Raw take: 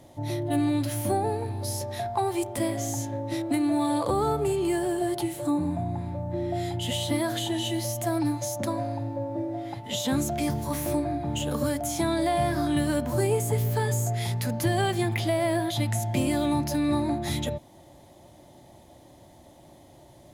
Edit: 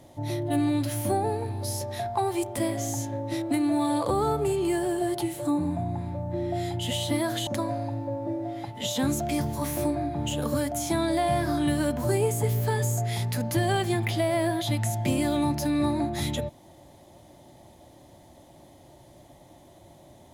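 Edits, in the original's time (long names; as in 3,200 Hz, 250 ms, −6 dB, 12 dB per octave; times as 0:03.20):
0:07.47–0:08.56: remove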